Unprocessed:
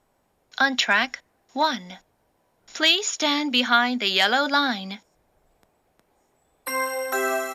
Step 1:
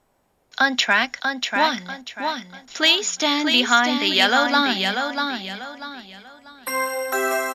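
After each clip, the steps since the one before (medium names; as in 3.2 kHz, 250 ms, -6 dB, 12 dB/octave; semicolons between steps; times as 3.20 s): feedback delay 641 ms, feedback 31%, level -5.5 dB; trim +2 dB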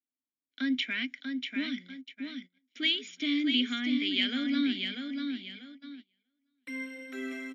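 gate -35 dBFS, range -24 dB; vowel filter i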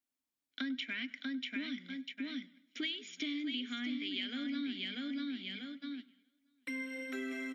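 compression 5:1, threshold -40 dBFS, peak gain reduction 15.5 dB; modulated delay 99 ms, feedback 48%, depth 64 cents, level -21.5 dB; trim +3 dB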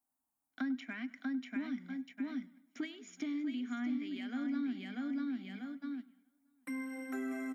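FFT filter 240 Hz 0 dB, 520 Hz -7 dB, 790 Hz +9 dB, 3.4 kHz -20 dB, 9 kHz +1 dB; trim +3.5 dB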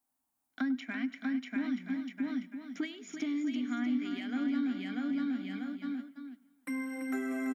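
delay 337 ms -8.5 dB; trim +4 dB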